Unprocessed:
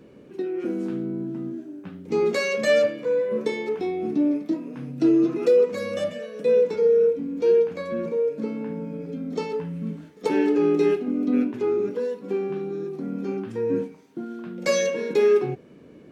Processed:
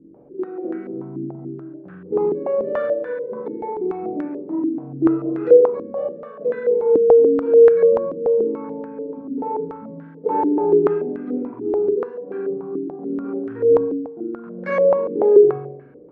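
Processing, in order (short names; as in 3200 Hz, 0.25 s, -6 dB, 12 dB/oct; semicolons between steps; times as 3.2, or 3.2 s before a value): flutter echo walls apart 7.4 m, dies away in 0.85 s; reverb RT60 0.40 s, pre-delay 22 ms, DRR 5 dB; stepped low-pass 6.9 Hz 300–1600 Hz; gain -7.5 dB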